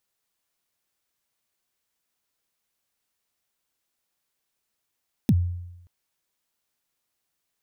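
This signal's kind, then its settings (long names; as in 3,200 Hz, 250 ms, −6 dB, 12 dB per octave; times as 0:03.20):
synth kick length 0.58 s, from 270 Hz, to 88 Hz, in 48 ms, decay 0.92 s, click on, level −13 dB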